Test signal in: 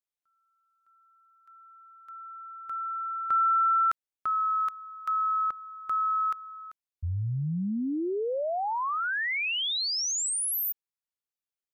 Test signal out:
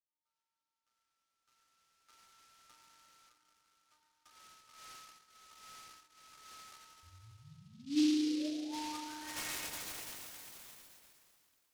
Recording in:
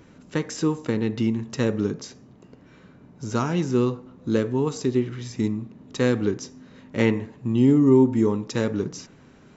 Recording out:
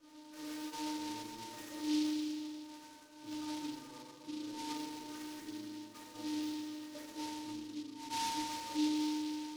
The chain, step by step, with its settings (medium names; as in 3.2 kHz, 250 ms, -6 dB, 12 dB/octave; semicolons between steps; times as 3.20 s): three-band isolator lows -16 dB, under 510 Hz, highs -21 dB, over 2 kHz; compressor with a negative ratio -40 dBFS, ratio -1; treble shelf 6.8 kHz -4 dB; inharmonic resonator 300 Hz, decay 0.35 s, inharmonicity 0.002; FDN reverb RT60 2.9 s, high-frequency decay 0.9×, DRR -7.5 dB; delay time shaken by noise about 3.9 kHz, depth 0.11 ms; trim +1.5 dB